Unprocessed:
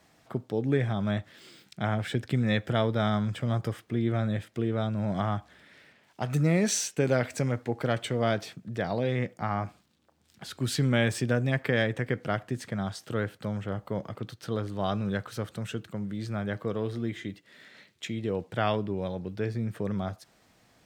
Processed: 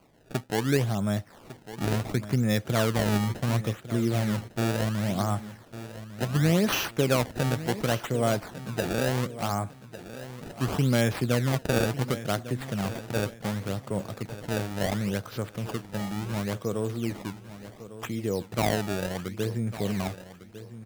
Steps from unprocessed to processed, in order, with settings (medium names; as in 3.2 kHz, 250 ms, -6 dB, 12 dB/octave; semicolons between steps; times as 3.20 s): dynamic bell 1.9 kHz, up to -4 dB, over -44 dBFS, Q 1.6; decimation with a swept rate 24×, swing 160% 0.7 Hz; on a send: feedback delay 1152 ms, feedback 31%, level -14 dB; on the sum: trim +1.5 dB